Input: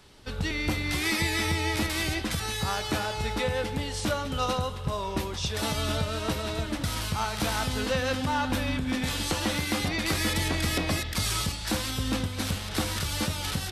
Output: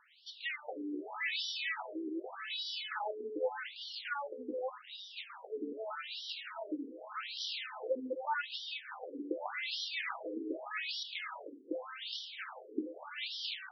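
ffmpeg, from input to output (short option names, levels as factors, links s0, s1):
-af "bandreject=f=1100:w=16,afftfilt=real='re*between(b*sr/1024,330*pow(4200/330,0.5+0.5*sin(2*PI*0.84*pts/sr))/1.41,330*pow(4200/330,0.5+0.5*sin(2*PI*0.84*pts/sr))*1.41)':imag='im*between(b*sr/1024,330*pow(4200/330,0.5+0.5*sin(2*PI*0.84*pts/sr))/1.41,330*pow(4200/330,0.5+0.5*sin(2*PI*0.84*pts/sr))*1.41)':win_size=1024:overlap=0.75,volume=0.75"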